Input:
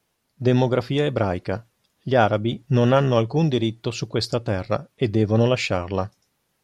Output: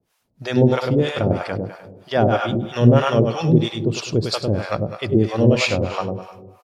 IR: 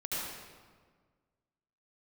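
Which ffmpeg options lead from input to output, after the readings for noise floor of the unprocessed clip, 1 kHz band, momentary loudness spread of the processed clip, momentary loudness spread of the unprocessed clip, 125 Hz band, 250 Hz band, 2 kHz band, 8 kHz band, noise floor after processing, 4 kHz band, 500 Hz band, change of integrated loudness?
-72 dBFS, +1.0 dB, 11 LU, 10 LU, +3.0 dB, +3.5 dB, +2.5 dB, +4.0 dB, -68 dBFS, +2.5 dB, +2.0 dB, +2.5 dB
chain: -filter_complex "[0:a]aecho=1:1:101|202|303|404|505:0.631|0.252|0.101|0.0404|0.0162,asplit=2[s0][s1];[1:a]atrim=start_sample=2205[s2];[s1][s2]afir=irnorm=-1:irlink=0,volume=0.15[s3];[s0][s3]amix=inputs=2:normalize=0,acrossover=split=630[s4][s5];[s4]aeval=exprs='val(0)*(1-1/2+1/2*cos(2*PI*3.1*n/s))':c=same[s6];[s5]aeval=exprs='val(0)*(1-1/2-1/2*cos(2*PI*3.1*n/s))':c=same[s7];[s6][s7]amix=inputs=2:normalize=0,volume=1.68"

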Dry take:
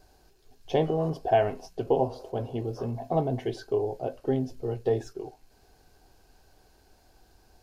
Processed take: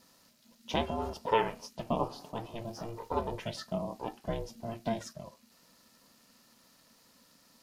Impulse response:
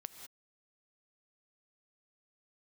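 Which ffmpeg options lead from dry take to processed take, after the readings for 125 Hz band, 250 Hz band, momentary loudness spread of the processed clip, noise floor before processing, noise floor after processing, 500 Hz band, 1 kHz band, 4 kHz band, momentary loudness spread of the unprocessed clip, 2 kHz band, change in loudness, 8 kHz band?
-9.0 dB, -6.0 dB, 13 LU, -62 dBFS, -64 dBFS, -9.0 dB, -2.5 dB, +3.5 dB, 10 LU, +0.5 dB, -6.5 dB, no reading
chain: -af "tiltshelf=f=940:g=-7.5,aeval=exprs='val(0)*sin(2*PI*230*n/s)':c=same"

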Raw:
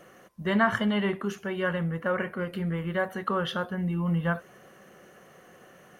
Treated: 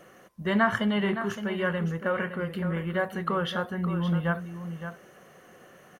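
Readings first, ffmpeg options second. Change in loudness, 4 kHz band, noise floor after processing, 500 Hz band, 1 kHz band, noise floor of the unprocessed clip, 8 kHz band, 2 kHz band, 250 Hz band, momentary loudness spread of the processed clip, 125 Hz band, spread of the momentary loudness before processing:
0.0 dB, +0.5 dB, -54 dBFS, +0.5 dB, +0.5 dB, -54 dBFS, no reading, +0.5 dB, +0.5 dB, 11 LU, +0.5 dB, 8 LU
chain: -af "aecho=1:1:565:0.316"

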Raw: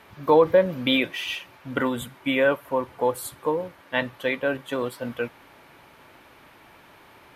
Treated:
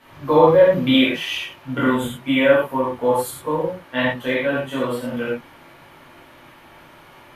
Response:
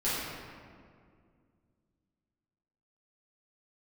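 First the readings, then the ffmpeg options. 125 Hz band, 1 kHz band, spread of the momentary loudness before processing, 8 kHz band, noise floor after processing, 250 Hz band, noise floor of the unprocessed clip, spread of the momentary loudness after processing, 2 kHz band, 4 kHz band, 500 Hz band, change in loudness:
+8.0 dB, +5.0 dB, 12 LU, +3.5 dB, -47 dBFS, +7.5 dB, -52 dBFS, 12 LU, +4.0 dB, +5.0 dB, +5.0 dB, +5.5 dB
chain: -filter_complex "[1:a]atrim=start_sample=2205,atrim=end_sample=3969,asetrate=29988,aresample=44100[s0];[0:a][s0]afir=irnorm=-1:irlink=0,volume=0.596"

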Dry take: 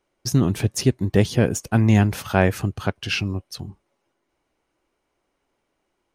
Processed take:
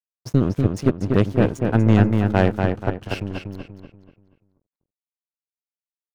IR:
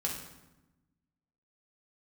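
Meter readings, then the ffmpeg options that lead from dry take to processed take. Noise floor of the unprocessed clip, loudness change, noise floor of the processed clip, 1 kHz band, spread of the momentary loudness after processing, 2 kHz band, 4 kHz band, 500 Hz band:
-75 dBFS, +1.0 dB, under -85 dBFS, +1.0 dB, 13 LU, -2.5 dB, -8.0 dB, +1.5 dB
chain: -filter_complex "[0:a]aeval=exprs='sgn(val(0))*max(abs(val(0))-0.0299,0)':c=same,highshelf=f=2700:g=-12,aeval=exprs='0.668*(cos(1*acos(clip(val(0)/0.668,-1,1)))-cos(1*PI/2))+0.119*(cos(6*acos(clip(val(0)/0.668,-1,1)))-cos(6*PI/2))+0.0668*(cos(8*acos(clip(val(0)/0.668,-1,1)))-cos(8*PI/2))':c=same,asplit=2[s0][s1];[s1]adelay=241,lowpass=f=4200:p=1,volume=0.596,asplit=2[s2][s3];[s3]adelay=241,lowpass=f=4200:p=1,volume=0.39,asplit=2[s4][s5];[s5]adelay=241,lowpass=f=4200:p=1,volume=0.39,asplit=2[s6][s7];[s7]adelay=241,lowpass=f=4200:p=1,volume=0.39,asplit=2[s8][s9];[s9]adelay=241,lowpass=f=4200:p=1,volume=0.39[s10];[s2][s4][s6][s8][s10]amix=inputs=5:normalize=0[s11];[s0][s11]amix=inputs=2:normalize=0"

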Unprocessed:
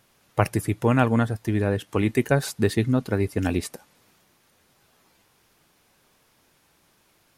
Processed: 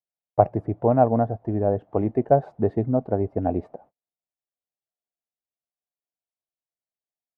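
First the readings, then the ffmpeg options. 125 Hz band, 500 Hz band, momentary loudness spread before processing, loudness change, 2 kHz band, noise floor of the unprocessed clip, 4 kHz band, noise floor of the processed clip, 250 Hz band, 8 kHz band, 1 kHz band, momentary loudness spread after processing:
-2.5 dB, +4.0 dB, 6 LU, +0.5 dB, under -15 dB, -64 dBFS, under -30 dB, under -85 dBFS, -1.5 dB, under -40 dB, +4.5 dB, 7 LU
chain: -af "agate=range=0.00708:threshold=0.00316:ratio=16:detection=peak,lowpass=f=690:t=q:w=4.9,volume=0.708"

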